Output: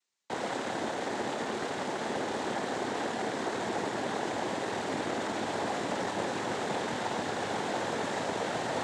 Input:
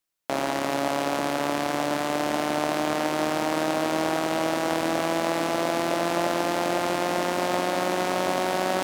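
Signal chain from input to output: limiter -20 dBFS, peak gain reduction 10 dB; noise vocoder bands 6

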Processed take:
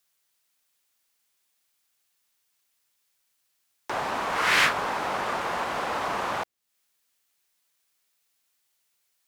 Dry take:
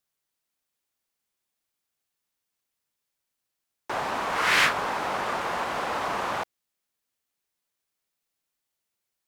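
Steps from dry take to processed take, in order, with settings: mismatched tape noise reduction encoder only

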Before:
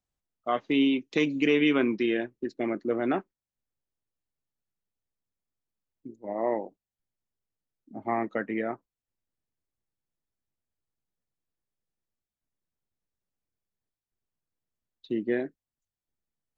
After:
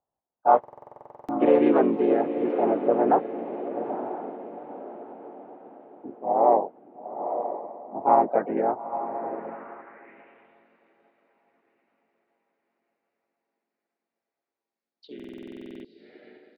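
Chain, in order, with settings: tilt shelf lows +10 dB, about 1200 Hz; diffused feedback echo 0.923 s, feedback 41%, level -9 dB; harmoniser -4 st -6 dB, +3 st -5 dB, +4 st -12 dB; band-pass sweep 810 Hz -> 4300 Hz, 9.32–10.67; stuck buffer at 0.59/15.15, samples 2048, times 14; gain +7 dB

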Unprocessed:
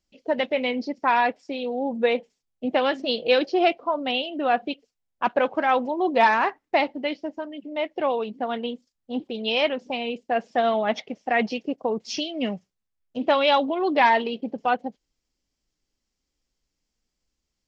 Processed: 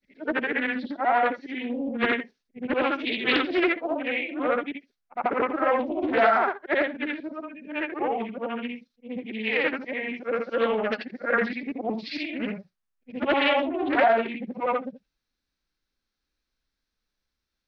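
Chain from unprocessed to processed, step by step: short-time reversal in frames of 0.174 s; bell 1800 Hz +6.5 dB 0.99 oct; formant shift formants -4 st; Doppler distortion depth 0.29 ms

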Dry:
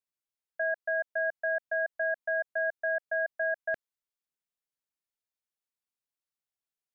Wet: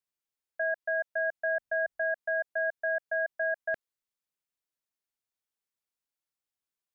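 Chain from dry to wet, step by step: 1.42–2 low shelf 160 Hz +12 dB

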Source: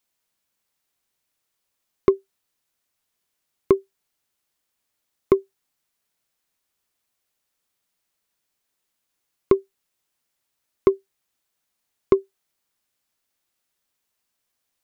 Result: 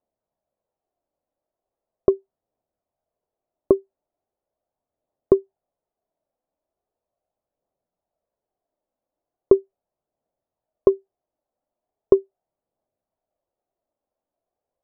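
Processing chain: synth low-pass 650 Hz, resonance Q 3.6; phaser 0.39 Hz, delay 3.9 ms, feedback 29%; gain -1.5 dB

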